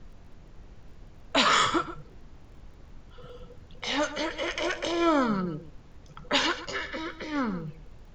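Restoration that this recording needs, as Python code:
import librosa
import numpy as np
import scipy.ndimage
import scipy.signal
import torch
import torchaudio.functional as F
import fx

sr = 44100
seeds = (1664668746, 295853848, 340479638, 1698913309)

y = fx.fix_declick_ar(x, sr, threshold=6.5)
y = fx.noise_reduce(y, sr, print_start_s=5.66, print_end_s=6.16, reduce_db=24.0)
y = fx.fix_echo_inverse(y, sr, delay_ms=130, level_db=-14.0)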